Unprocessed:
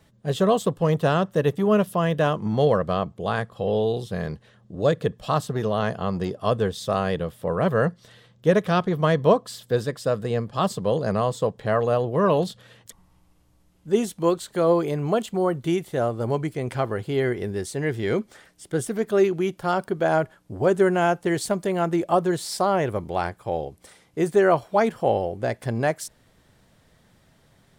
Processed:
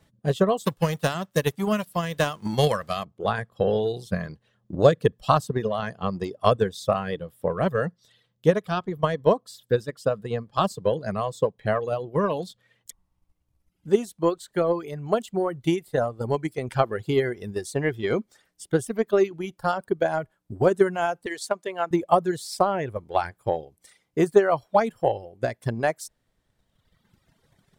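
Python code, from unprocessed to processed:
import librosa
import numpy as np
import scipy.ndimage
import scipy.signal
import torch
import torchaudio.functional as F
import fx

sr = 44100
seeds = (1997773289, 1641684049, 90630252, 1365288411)

y = fx.envelope_flatten(x, sr, power=0.6, at=(0.64, 3.03), fade=0.02)
y = fx.weighting(y, sr, curve='A', at=(21.26, 21.91))
y = fx.dereverb_blind(y, sr, rt60_s=1.7)
y = fx.transient(y, sr, attack_db=8, sustain_db=0)
y = fx.rider(y, sr, range_db=10, speed_s=2.0)
y = y * librosa.db_to_amplitude(-5.0)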